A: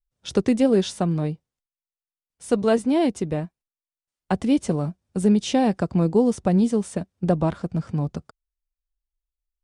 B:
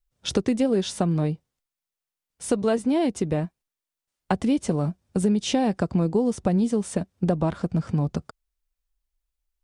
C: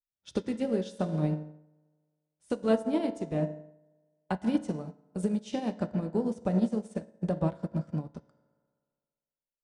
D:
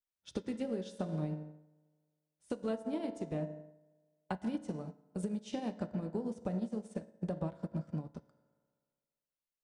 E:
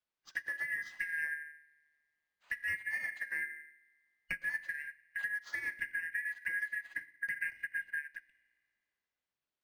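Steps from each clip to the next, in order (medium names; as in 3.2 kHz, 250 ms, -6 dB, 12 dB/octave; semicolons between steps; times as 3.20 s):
compression 3:1, threshold -27 dBFS, peak gain reduction 10.5 dB; trim +5.5 dB
reverberation RT60 1.9 s, pre-delay 3 ms, DRR 3 dB; upward expansion 2.5:1, over -33 dBFS; trim -4 dB
compression 6:1, threshold -29 dBFS, peak gain reduction 9.5 dB; trim -3.5 dB
four frequency bands reordered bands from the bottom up 2143; decimation joined by straight lines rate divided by 4×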